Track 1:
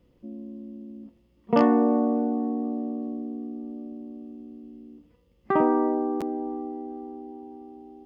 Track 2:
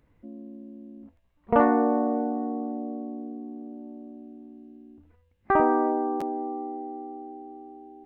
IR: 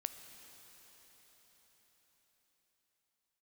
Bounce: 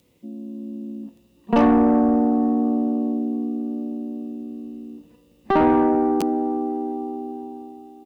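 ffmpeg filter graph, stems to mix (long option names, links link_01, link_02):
-filter_complex "[0:a]dynaudnorm=framelen=180:gausssize=7:maxgain=8dB,volume=-2.5dB,asplit=2[link_01][link_02];[link_02]volume=-14dB[link_03];[1:a]aexciter=amount=11.4:drive=6.7:freq=2500,adelay=0.6,volume=-6.5dB[link_04];[2:a]atrim=start_sample=2205[link_05];[link_03][link_05]afir=irnorm=-1:irlink=0[link_06];[link_01][link_04][link_06]amix=inputs=3:normalize=0,highpass=frequency=210:poles=1,asoftclip=type=tanh:threshold=-13.5dB,lowshelf=frequency=390:gain=6.5"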